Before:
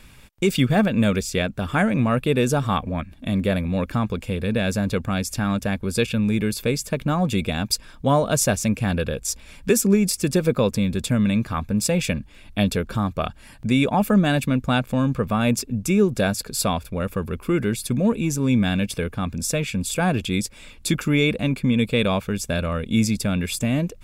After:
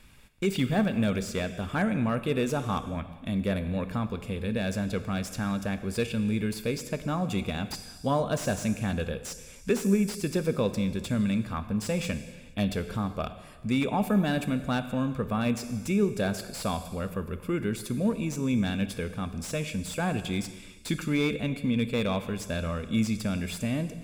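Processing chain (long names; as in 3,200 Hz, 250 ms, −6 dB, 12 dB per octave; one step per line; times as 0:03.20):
reverb whose tail is shaped and stops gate 500 ms falling, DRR 10.5 dB
slew-rate limiting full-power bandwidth 240 Hz
level −7.5 dB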